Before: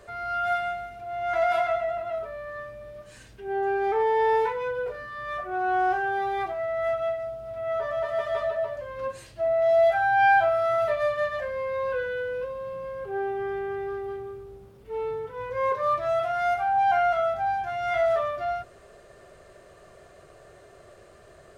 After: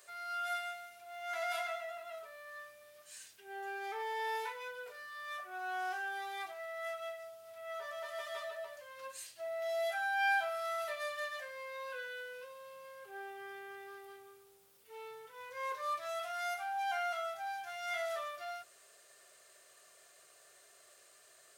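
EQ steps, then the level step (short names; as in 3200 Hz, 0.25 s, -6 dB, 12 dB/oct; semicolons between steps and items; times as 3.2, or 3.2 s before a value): differentiator; +4.0 dB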